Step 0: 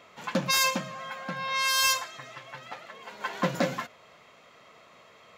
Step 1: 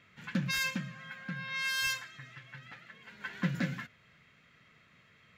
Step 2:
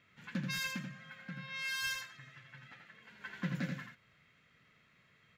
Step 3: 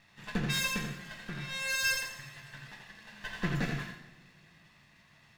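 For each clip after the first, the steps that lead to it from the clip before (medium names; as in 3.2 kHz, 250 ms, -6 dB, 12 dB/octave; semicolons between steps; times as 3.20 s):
FFT filter 150 Hz 0 dB, 640 Hz -22 dB, 1.1 kHz -19 dB, 1.6 kHz -5 dB, 6 kHz -15 dB; trim +2.5 dB
delay 84 ms -5.5 dB; trim -6 dB
comb filter that takes the minimum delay 1.1 ms; two-slope reverb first 0.69 s, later 2.5 s, from -18 dB, DRR 3 dB; trim +6 dB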